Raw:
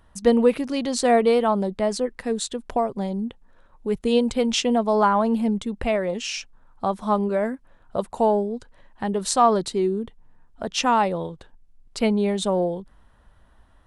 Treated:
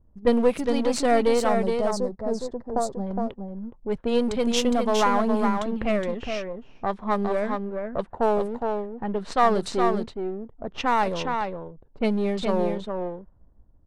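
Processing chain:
gain on one half-wave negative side −7 dB
0:01.49–0:03.07: drawn EQ curve 810 Hz 0 dB, 3,000 Hz −19 dB, 4,900 Hz +1 dB
single-tap delay 414 ms −5 dB
pitch vibrato 0.48 Hz 15 cents
low-pass that shuts in the quiet parts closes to 350 Hz, open at −18.5 dBFS

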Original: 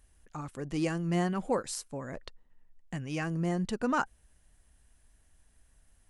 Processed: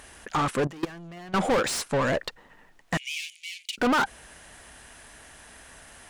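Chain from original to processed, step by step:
mid-hump overdrive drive 35 dB, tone 2,900 Hz, clips at −15.5 dBFS
0:00.67–0:01.34: output level in coarse steps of 21 dB
0:02.97–0:03.78: Chebyshev high-pass with heavy ripple 2,200 Hz, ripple 3 dB

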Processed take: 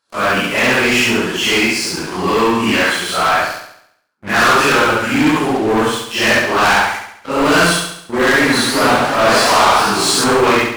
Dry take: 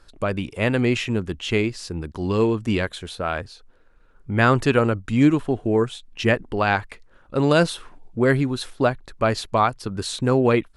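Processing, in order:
random phases in long frames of 200 ms
high-pass filter 230 Hz 12 dB per octave
low shelf with overshoot 700 Hz −6 dB, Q 1.5
notch filter 3,700 Hz, Q 6.1
leveller curve on the samples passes 5
flutter between parallel walls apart 11.8 metres, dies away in 0.71 s
0:08.24–0:10.24: feedback echo with a swinging delay time 86 ms, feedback 64%, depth 218 cents, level −5 dB
level −1.5 dB

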